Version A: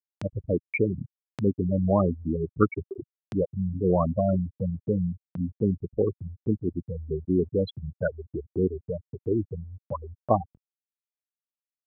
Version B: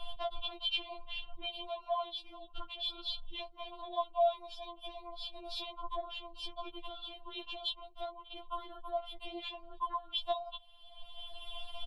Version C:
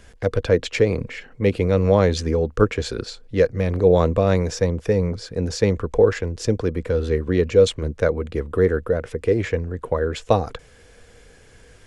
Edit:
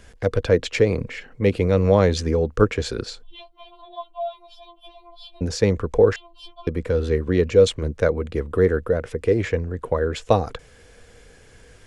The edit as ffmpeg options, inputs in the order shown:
-filter_complex "[1:a]asplit=2[a][b];[2:a]asplit=3[c][d][e];[c]atrim=end=3.232[f];[a]atrim=start=3.228:end=5.412[g];[d]atrim=start=5.408:end=6.162[h];[b]atrim=start=6.158:end=6.672[i];[e]atrim=start=6.668[j];[f][g]acrossfade=d=0.004:c1=hsin:c2=hsin[k];[k][h]acrossfade=d=0.004:c1=hsin:c2=hsin[l];[l][i]acrossfade=d=0.004:c1=hsin:c2=hsin[m];[m][j]acrossfade=d=0.004:c1=hsin:c2=hsin"

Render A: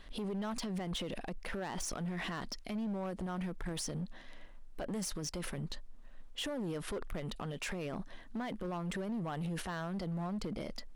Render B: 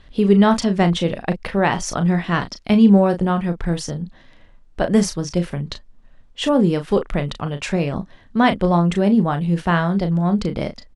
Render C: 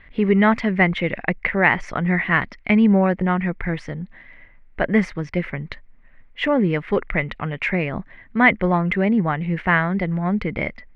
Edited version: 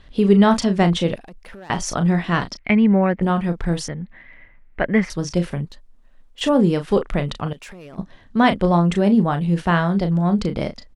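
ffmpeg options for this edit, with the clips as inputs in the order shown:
-filter_complex "[0:a]asplit=3[a][b][c];[2:a]asplit=2[d][e];[1:a]asplit=6[f][g][h][i][j][k];[f]atrim=end=1.162[l];[a]atrim=start=1.158:end=1.702[m];[g]atrim=start=1.698:end=2.572[n];[d]atrim=start=2.568:end=3.222[o];[h]atrim=start=3.218:end=3.882[p];[e]atrim=start=3.878:end=5.102[q];[i]atrim=start=5.098:end=5.652[r];[b]atrim=start=5.648:end=6.412[s];[j]atrim=start=6.408:end=7.532[t];[c]atrim=start=7.528:end=7.982[u];[k]atrim=start=7.978[v];[l][m]acrossfade=d=0.004:c1=hsin:c2=hsin[w];[w][n]acrossfade=d=0.004:c1=hsin:c2=hsin[x];[x][o]acrossfade=d=0.004:c1=hsin:c2=hsin[y];[y][p]acrossfade=d=0.004:c1=hsin:c2=hsin[z];[z][q]acrossfade=d=0.004:c1=hsin:c2=hsin[aa];[aa][r]acrossfade=d=0.004:c1=hsin:c2=hsin[ab];[ab][s]acrossfade=d=0.004:c1=hsin:c2=hsin[ac];[ac][t]acrossfade=d=0.004:c1=hsin:c2=hsin[ad];[ad][u]acrossfade=d=0.004:c1=hsin:c2=hsin[ae];[ae][v]acrossfade=d=0.004:c1=hsin:c2=hsin"

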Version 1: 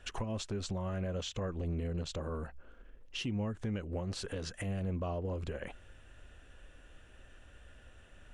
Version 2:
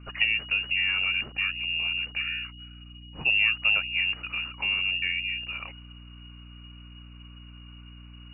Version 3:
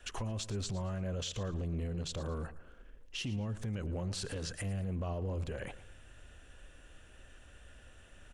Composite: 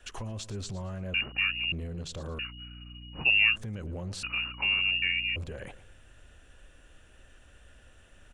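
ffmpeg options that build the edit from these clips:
-filter_complex "[1:a]asplit=3[a][b][c];[2:a]asplit=4[d][e][f][g];[d]atrim=end=1.142[h];[a]atrim=start=1.138:end=1.722[i];[e]atrim=start=1.718:end=2.392[j];[b]atrim=start=2.388:end=3.562[k];[f]atrim=start=3.558:end=4.232[l];[c]atrim=start=4.228:end=5.362[m];[g]atrim=start=5.358[n];[h][i]acrossfade=d=0.004:c1=hsin:c2=hsin[o];[o][j]acrossfade=d=0.004:c1=hsin:c2=hsin[p];[p][k]acrossfade=d=0.004:c1=hsin:c2=hsin[q];[q][l]acrossfade=d=0.004:c1=hsin:c2=hsin[r];[r][m]acrossfade=d=0.004:c1=hsin:c2=hsin[s];[s][n]acrossfade=d=0.004:c1=hsin:c2=hsin"

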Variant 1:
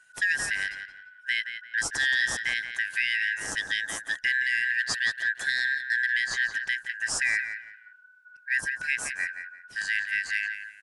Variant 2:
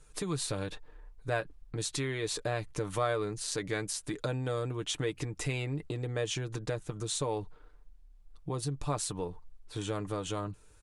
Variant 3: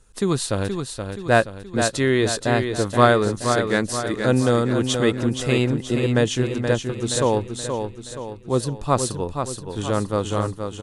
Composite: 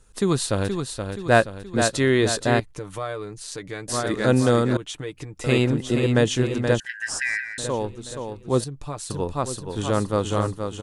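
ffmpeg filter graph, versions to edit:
-filter_complex "[1:a]asplit=3[a][b][c];[2:a]asplit=5[d][e][f][g][h];[d]atrim=end=2.602[i];[a]atrim=start=2.598:end=3.882[j];[e]atrim=start=3.878:end=4.772[k];[b]atrim=start=4.768:end=5.442[l];[f]atrim=start=5.438:end=6.802[m];[0:a]atrim=start=6.798:end=7.582[n];[g]atrim=start=7.578:end=8.642[o];[c]atrim=start=8.638:end=9.102[p];[h]atrim=start=9.098[q];[i][j]acrossfade=d=0.004:c1=hsin:c2=hsin[r];[r][k]acrossfade=d=0.004:c1=hsin:c2=hsin[s];[s][l]acrossfade=d=0.004:c1=hsin:c2=hsin[t];[t][m]acrossfade=d=0.004:c1=hsin:c2=hsin[u];[u][n]acrossfade=d=0.004:c1=hsin:c2=hsin[v];[v][o]acrossfade=d=0.004:c1=hsin:c2=hsin[w];[w][p]acrossfade=d=0.004:c1=hsin:c2=hsin[x];[x][q]acrossfade=d=0.004:c1=hsin:c2=hsin"

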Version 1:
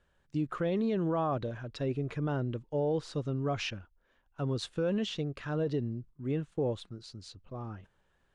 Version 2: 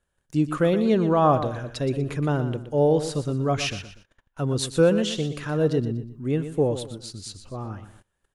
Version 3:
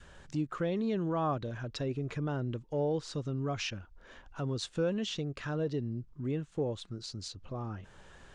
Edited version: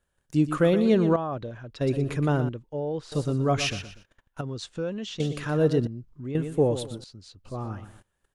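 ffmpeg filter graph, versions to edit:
-filter_complex "[0:a]asplit=3[a][b][c];[2:a]asplit=2[d][e];[1:a]asplit=6[f][g][h][i][j][k];[f]atrim=end=1.162[l];[a]atrim=start=1.158:end=1.812[m];[g]atrim=start=1.808:end=2.492[n];[b]atrim=start=2.488:end=3.122[o];[h]atrim=start=3.118:end=4.412[p];[d]atrim=start=4.408:end=5.202[q];[i]atrim=start=5.198:end=5.872[r];[e]atrim=start=5.868:end=6.352[s];[j]atrim=start=6.348:end=7.042[t];[c]atrim=start=7.038:end=7.452[u];[k]atrim=start=7.448[v];[l][m]acrossfade=d=0.004:c1=hsin:c2=hsin[w];[w][n]acrossfade=d=0.004:c1=hsin:c2=hsin[x];[x][o]acrossfade=d=0.004:c1=hsin:c2=hsin[y];[y][p]acrossfade=d=0.004:c1=hsin:c2=hsin[z];[z][q]acrossfade=d=0.004:c1=hsin:c2=hsin[aa];[aa][r]acrossfade=d=0.004:c1=hsin:c2=hsin[ab];[ab][s]acrossfade=d=0.004:c1=hsin:c2=hsin[ac];[ac][t]acrossfade=d=0.004:c1=hsin:c2=hsin[ad];[ad][u]acrossfade=d=0.004:c1=hsin:c2=hsin[ae];[ae][v]acrossfade=d=0.004:c1=hsin:c2=hsin"

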